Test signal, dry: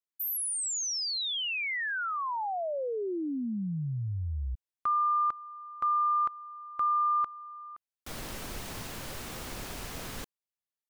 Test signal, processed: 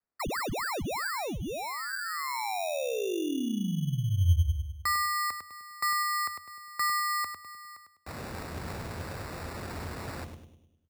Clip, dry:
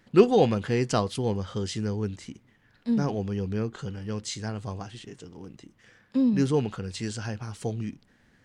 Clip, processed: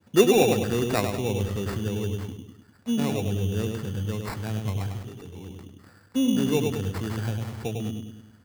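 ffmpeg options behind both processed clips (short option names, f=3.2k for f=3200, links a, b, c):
-filter_complex "[0:a]adynamicequalizer=threshold=0.00708:dfrequency=1900:dqfactor=0.83:tfrequency=1900:tqfactor=0.83:attack=5:release=100:ratio=0.375:range=2:mode=cutabove:tftype=bell,acrossover=split=210[a][b];[a]alimiter=level_in=6dB:limit=-24dB:level=0:latency=1,volume=-6dB[c];[c][b]amix=inputs=2:normalize=0,highpass=61,equalizer=f=86:w=4.3:g=13,asplit=2[d][e];[e]adelay=101,lowpass=f=900:p=1,volume=-3dB,asplit=2[f][g];[g]adelay=101,lowpass=f=900:p=1,volume=0.52,asplit=2[h][i];[i]adelay=101,lowpass=f=900:p=1,volume=0.52,asplit=2[j][k];[k]adelay=101,lowpass=f=900:p=1,volume=0.52,asplit=2[l][m];[m]adelay=101,lowpass=f=900:p=1,volume=0.52,asplit=2[n][o];[o]adelay=101,lowpass=f=900:p=1,volume=0.52,asplit=2[p][q];[q]adelay=101,lowpass=f=900:p=1,volume=0.52[r];[f][h][j][l][n][p][r]amix=inputs=7:normalize=0[s];[d][s]amix=inputs=2:normalize=0,acrusher=samples=14:mix=1:aa=0.000001"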